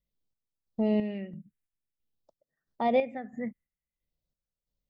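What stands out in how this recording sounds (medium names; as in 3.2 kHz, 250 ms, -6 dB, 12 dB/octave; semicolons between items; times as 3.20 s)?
phasing stages 4, 0.5 Hz, lowest notch 800–2200 Hz; chopped level 1.5 Hz, depth 60%, duty 50%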